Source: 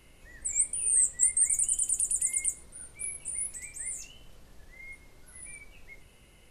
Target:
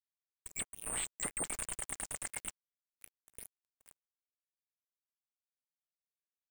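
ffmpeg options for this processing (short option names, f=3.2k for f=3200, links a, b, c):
-filter_complex "[0:a]acrusher=bits=3:mix=0:aa=0.5,acrossover=split=4000[a][b];[b]acompressor=threshold=-35dB:ratio=4:attack=1:release=60[c];[a][c]amix=inputs=2:normalize=0,volume=-2.5dB"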